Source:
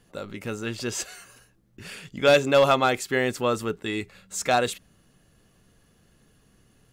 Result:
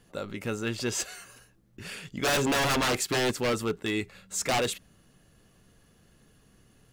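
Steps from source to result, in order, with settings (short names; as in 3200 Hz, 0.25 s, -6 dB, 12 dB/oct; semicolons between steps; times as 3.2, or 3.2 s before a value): 2.28–3.31 sample leveller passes 1; wavefolder -20.5 dBFS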